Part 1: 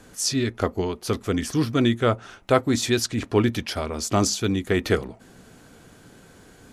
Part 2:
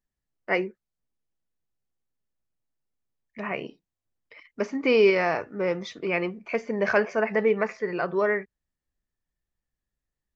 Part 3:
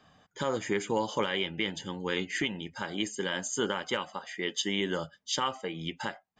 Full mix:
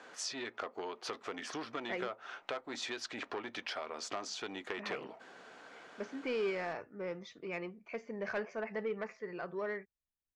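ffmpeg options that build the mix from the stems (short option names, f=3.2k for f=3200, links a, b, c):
-filter_complex "[0:a]aemphasis=mode=reproduction:type=75fm,acompressor=threshold=-28dB:ratio=1.5,asoftclip=type=tanh:threshold=-19dB,volume=2.5dB[a];[1:a]asoftclip=type=tanh:threshold=-14.5dB,adelay=1400,volume=-13.5dB[b];[a]highpass=670,lowpass=6.3k,acompressor=threshold=-38dB:ratio=4,volume=0dB[c];[b][c]amix=inputs=2:normalize=0"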